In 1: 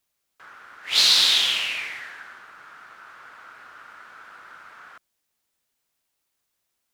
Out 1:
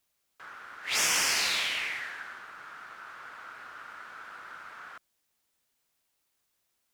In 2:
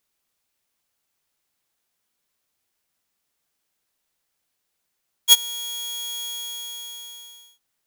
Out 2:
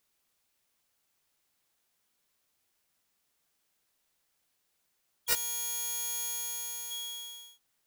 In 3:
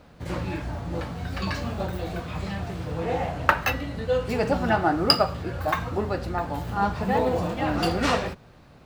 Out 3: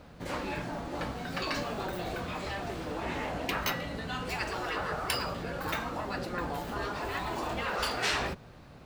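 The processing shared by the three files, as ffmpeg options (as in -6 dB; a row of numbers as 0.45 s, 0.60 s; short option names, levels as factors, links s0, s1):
-af "afftfilt=real='re*lt(hypot(re,im),0.158)':imag='im*lt(hypot(re,im),0.158)':win_size=1024:overlap=0.75"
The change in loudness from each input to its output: -9.5 LU, -10.0 LU, -7.5 LU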